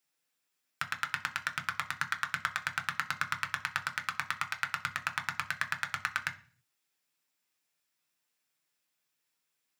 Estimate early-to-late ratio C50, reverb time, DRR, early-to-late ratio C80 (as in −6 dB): 16.0 dB, 0.40 s, 5.0 dB, 20.0 dB